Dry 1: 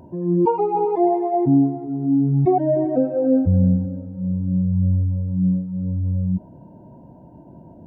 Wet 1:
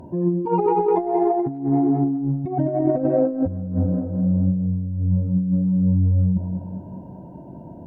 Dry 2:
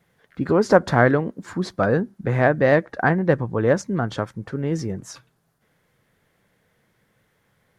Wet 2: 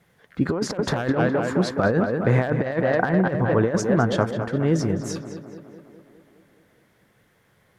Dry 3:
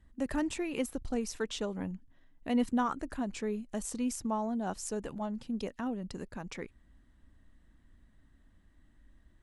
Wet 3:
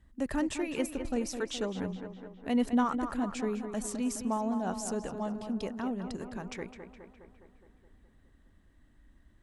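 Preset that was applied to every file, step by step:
one-sided clip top -8 dBFS, bottom -6 dBFS; tape echo 0.208 s, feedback 68%, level -8 dB, low-pass 2900 Hz; negative-ratio compressor -20 dBFS, ratio -0.5; gain +1 dB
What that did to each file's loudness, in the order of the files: -1.0, -1.5, +2.0 LU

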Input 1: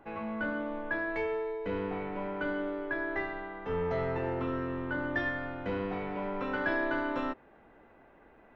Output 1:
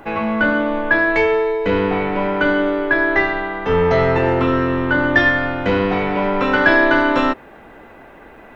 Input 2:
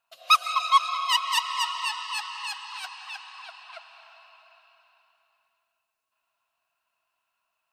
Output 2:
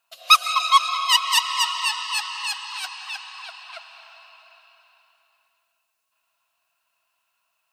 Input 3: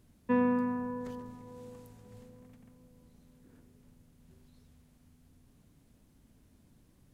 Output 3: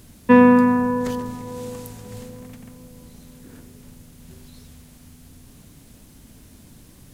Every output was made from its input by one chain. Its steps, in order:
high shelf 2500 Hz +7.5 dB; normalise peaks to -2 dBFS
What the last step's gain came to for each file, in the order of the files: +16.0, +2.0, +15.5 dB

